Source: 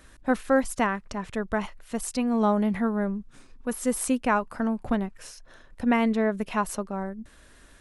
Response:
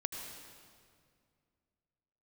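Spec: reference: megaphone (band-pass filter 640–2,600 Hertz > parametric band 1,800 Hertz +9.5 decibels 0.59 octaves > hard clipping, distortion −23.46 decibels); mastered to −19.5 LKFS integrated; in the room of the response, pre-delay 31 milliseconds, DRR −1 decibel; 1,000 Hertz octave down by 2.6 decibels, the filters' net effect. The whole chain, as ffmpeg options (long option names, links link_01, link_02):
-filter_complex "[0:a]equalizer=frequency=1000:width_type=o:gain=-3.5,asplit=2[link_01][link_02];[1:a]atrim=start_sample=2205,adelay=31[link_03];[link_02][link_03]afir=irnorm=-1:irlink=0,volume=0dB[link_04];[link_01][link_04]amix=inputs=2:normalize=0,highpass=640,lowpass=2600,equalizer=frequency=1800:width_type=o:width=0.59:gain=9.5,asoftclip=type=hard:threshold=-14dB,volume=8.5dB"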